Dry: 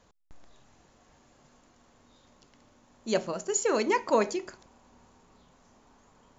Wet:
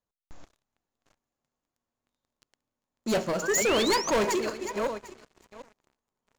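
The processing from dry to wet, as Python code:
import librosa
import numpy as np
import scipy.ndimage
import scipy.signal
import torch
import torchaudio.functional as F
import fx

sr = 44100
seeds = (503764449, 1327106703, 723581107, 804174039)

y = fx.reverse_delay_fb(x, sr, ms=375, feedback_pct=42, wet_db=-10.0)
y = fx.leveller(y, sr, passes=5)
y = fx.spec_paint(y, sr, seeds[0], shape='rise', start_s=3.42, length_s=0.69, low_hz=1400.0, high_hz=6700.0, level_db=-24.0)
y = fx.upward_expand(y, sr, threshold_db=-33.0, expansion=1.5)
y = y * librosa.db_to_amplitude(-8.0)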